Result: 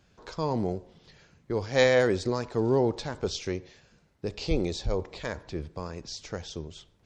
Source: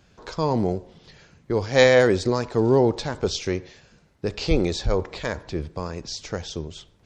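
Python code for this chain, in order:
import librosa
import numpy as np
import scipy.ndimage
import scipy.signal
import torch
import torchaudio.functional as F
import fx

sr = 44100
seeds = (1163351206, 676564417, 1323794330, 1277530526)

y = fx.dynamic_eq(x, sr, hz=1500.0, q=1.7, threshold_db=-47.0, ratio=4.0, max_db=-6, at=(3.51, 5.2))
y = F.gain(torch.from_numpy(y), -6.0).numpy()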